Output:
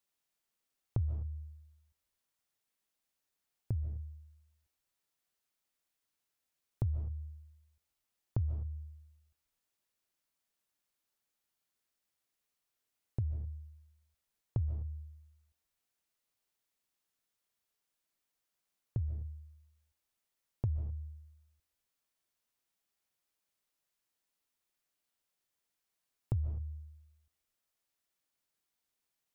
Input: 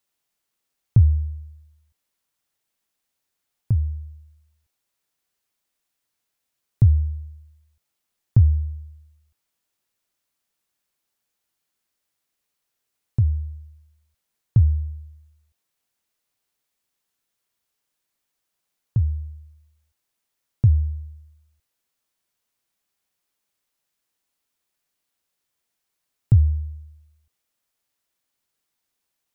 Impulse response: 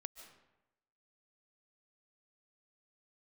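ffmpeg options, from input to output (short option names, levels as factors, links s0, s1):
-filter_complex "[0:a]acompressor=threshold=0.0447:ratio=3[s0];[1:a]atrim=start_sample=2205,afade=t=out:st=0.31:d=0.01,atrim=end_sample=14112[s1];[s0][s1]afir=irnorm=-1:irlink=0,volume=0.794"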